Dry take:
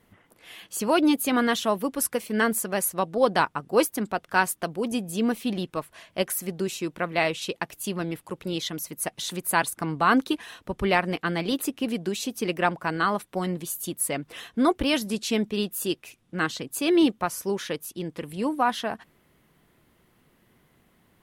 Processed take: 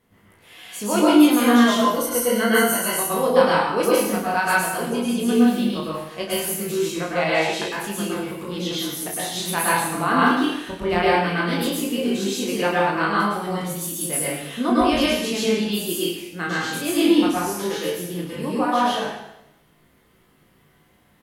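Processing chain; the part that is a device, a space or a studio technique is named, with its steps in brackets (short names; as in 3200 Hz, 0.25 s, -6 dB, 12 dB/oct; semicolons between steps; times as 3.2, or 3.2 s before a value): 1.64–2.82 ripple EQ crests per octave 1.9, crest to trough 13 dB; double-tracked vocal (doubler 34 ms -6 dB; chorus 0.15 Hz, delay 18.5 ms, depth 5.5 ms); plate-style reverb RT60 0.84 s, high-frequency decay 1×, pre-delay 95 ms, DRR -6 dB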